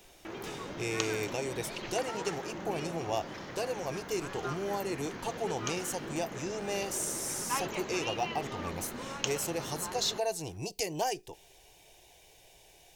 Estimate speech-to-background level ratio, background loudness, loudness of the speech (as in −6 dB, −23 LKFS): 4.5 dB, −40.0 LKFS, −35.5 LKFS